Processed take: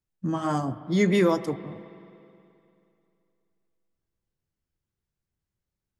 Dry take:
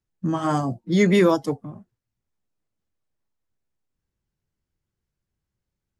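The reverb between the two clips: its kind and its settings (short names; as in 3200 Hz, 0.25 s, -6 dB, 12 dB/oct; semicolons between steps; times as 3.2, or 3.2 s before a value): spring tank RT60 2.7 s, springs 43/53 ms, chirp 40 ms, DRR 14 dB; gain -4 dB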